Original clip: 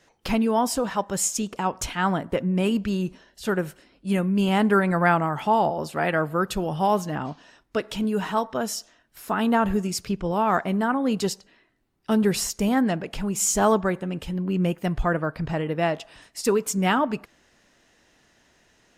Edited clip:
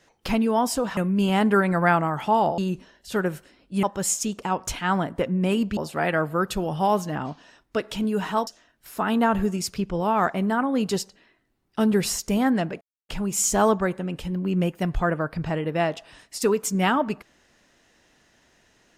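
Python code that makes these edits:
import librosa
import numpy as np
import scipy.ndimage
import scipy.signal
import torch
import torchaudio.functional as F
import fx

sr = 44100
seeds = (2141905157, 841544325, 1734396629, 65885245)

y = fx.edit(x, sr, fx.swap(start_s=0.97, length_s=1.94, other_s=4.16, other_length_s=1.61),
    fx.cut(start_s=8.47, length_s=0.31),
    fx.insert_silence(at_s=13.12, length_s=0.28), tone=tone)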